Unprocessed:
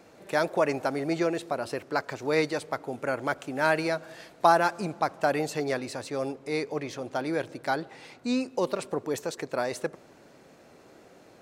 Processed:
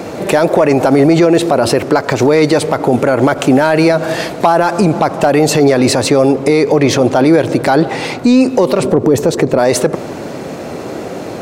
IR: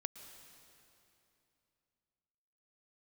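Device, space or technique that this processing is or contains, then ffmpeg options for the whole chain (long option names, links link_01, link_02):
mastering chain: -filter_complex "[0:a]asettb=1/sr,asplit=3[link_01][link_02][link_03];[link_01]atrim=end=8.804[link_04];[link_02]atrim=start=8.8:end=9.59,asetpts=PTS-STARTPTS,afade=type=in:duration=0.004:curve=qsin,afade=type=out:start_time=0.786:duration=0.004:curve=qsin,tiltshelf=frequency=700:gain=5.5[link_05];[link_03]atrim=start=9.586[link_06];[link_04][link_05]acrossfade=duration=0.004:curve1=hsin:curve2=qsin[link_07];[link_07][link_06]acrossfade=duration=0.004:curve1=qsin:curve2=hsin,highpass=55,equalizer=frequency=1600:width_type=o:width=0.39:gain=-2.5,acompressor=threshold=-30dB:ratio=2.5,asoftclip=type=tanh:threshold=-19.5dB,tiltshelf=frequency=970:gain=3,asoftclip=type=hard:threshold=-21.5dB,alimiter=level_in=29.5dB:limit=-1dB:release=50:level=0:latency=1,volume=-1dB"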